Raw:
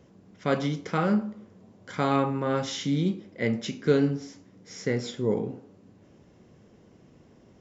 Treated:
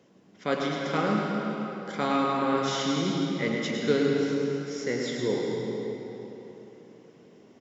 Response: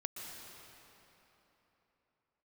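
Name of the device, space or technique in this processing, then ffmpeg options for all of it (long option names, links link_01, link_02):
PA in a hall: -filter_complex "[0:a]highpass=200,equalizer=frequency=3400:width_type=o:width=1.8:gain=3,aecho=1:1:105:0.447[link_01];[1:a]atrim=start_sample=2205[link_02];[link_01][link_02]afir=irnorm=-1:irlink=0,volume=1dB"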